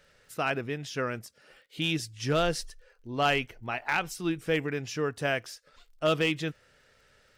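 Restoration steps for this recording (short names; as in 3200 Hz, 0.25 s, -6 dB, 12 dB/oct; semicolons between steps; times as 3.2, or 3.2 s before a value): clip repair -17.5 dBFS; de-click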